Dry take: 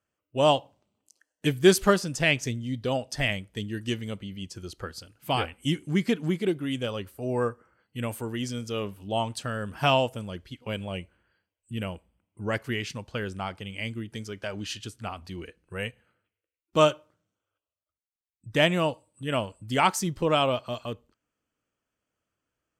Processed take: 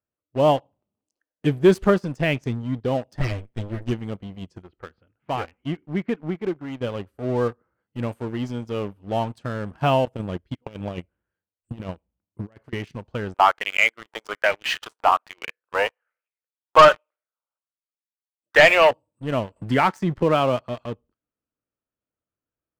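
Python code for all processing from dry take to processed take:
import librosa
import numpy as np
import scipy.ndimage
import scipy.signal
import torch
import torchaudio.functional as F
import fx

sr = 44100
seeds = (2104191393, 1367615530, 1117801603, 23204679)

y = fx.chain(x, sr, fx.lower_of_two(delay_ms=8.1),
    fx.low_shelf(hz=62.0, db=9.0), at=(3.19, 3.93))
y = fx.chain(y, sr, fx.lowpass(hz=2700.0, slope=24),
    fx.low_shelf(hz=480.0, db=-7.0), at=(4.62, 6.81))
y = fx.chain(y, sr, fx.transient(attack_db=3, sustain_db=-8),
    fx.over_compress(threshold_db=-34.0, ratio=-0.5), at=(10.05, 12.73))
y = fx.chain(y, sr, fx.highpass(hz=530.0, slope=24),
    fx.leveller(passes=3),
    fx.bell_lfo(hz=1.2, low_hz=890.0, high_hz=2500.0, db=13), at=(13.34, 18.91))
y = fx.chain(y, sr, fx.peak_eq(hz=1800.0, db=8.5, octaves=0.8),
    fx.band_squash(depth_pct=40), at=(19.56, 20.61))
y = fx.lowpass(y, sr, hz=1000.0, slope=6)
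y = fx.leveller(y, sr, passes=2)
y = y * 10.0 ** (-2.5 / 20.0)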